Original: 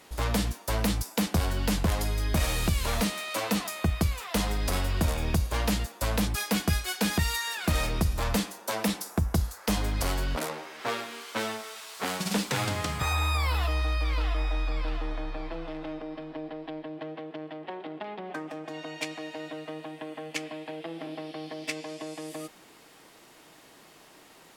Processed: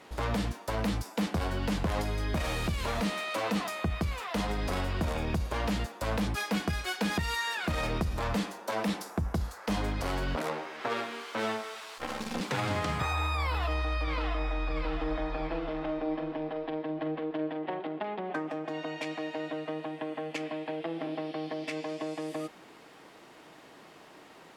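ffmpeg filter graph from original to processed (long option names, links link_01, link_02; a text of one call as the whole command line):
ffmpeg -i in.wav -filter_complex "[0:a]asettb=1/sr,asplit=3[link_01][link_02][link_03];[link_01]atrim=end=11.984[link_04];[link_02]atrim=start=11.98:end=12.41,asetpts=PTS-STARTPTS,afade=type=in:duration=0.004:curve=qsin,afade=type=out:start_time=0.426:duration=0.004:curve=qsin,aeval=exprs='val(0)*sin(2*PI*34*n/s)':channel_layout=same,aecho=1:1:3.8:0.98,atrim=end_sample=18963,aeval=exprs='max(val(0),0)':channel_layout=same[link_05];[link_03]atrim=start=12.406[link_06];[link_04][link_05]acrossfade=duration=0.004:curve1=hsin:curve2=qsin[link_07];[link_07][link_06]acrossfade=duration=0.004:curve1=qsin:curve2=hsin,asettb=1/sr,asplit=3[link_08][link_09][link_10];[link_08]atrim=end=14.034[link_11];[link_09]atrim=start=14.03:end=17.8,asetpts=PTS-STARTPTS,afade=type=in:duration=0.004:curve=qsin,afade=type=out:start_time=3.766:duration=0.004:curve=qsin,highshelf=frequency=10000:gain=-4,asplit=2[link_12][link_13];[link_13]adelay=45,volume=-10.5dB[link_14];[link_12][link_14]amix=inputs=2:normalize=0,atrim=end_sample=166257,aecho=1:1:673:0.376,atrim=end_sample=166257[link_15];[link_10]atrim=start=17.796[link_16];[link_11][link_15]acrossfade=duration=0.004:curve1=hsin:curve2=qsin[link_17];[link_17][link_16]acrossfade=duration=0.004:curve1=qsin:curve2=hsin,alimiter=limit=-22dB:level=0:latency=1:release=43,lowpass=frequency=2300:poles=1,lowshelf=frequency=68:gain=-10.5,volume=3.5dB" out.wav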